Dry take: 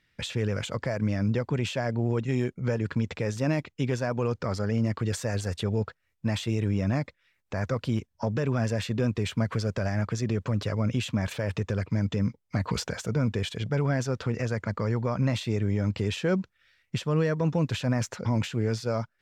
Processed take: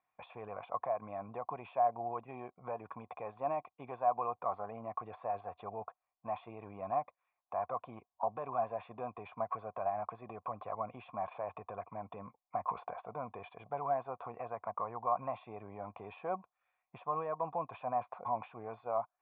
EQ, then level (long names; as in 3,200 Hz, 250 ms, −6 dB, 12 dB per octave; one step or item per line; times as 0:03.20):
formant resonators in series a
spectral tilt +3.5 dB per octave
+11.0 dB